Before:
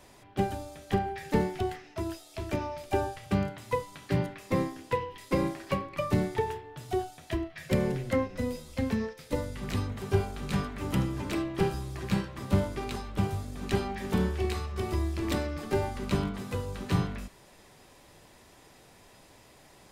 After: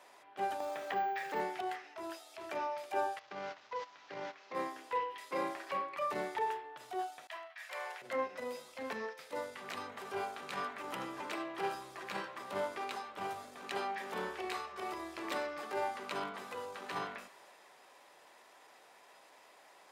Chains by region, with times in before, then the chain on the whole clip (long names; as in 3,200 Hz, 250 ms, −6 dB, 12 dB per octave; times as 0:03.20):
0:00.60–0:01.40: bad sample-rate conversion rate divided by 2×, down filtered, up hold + multiband upward and downward compressor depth 70%
0:03.19–0:04.55: linear delta modulator 32 kbit/s, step −39 dBFS + noise gate −40 dBFS, range −12 dB + downward compressor 2.5 to 1, threshold −30 dBFS
0:07.27–0:08.02: downward expander −48 dBFS + high-pass filter 730 Hz 24 dB per octave
whole clip: high-shelf EQ 2,600 Hz −11.5 dB; transient designer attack −7 dB, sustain +2 dB; high-pass filter 740 Hz 12 dB per octave; level +3 dB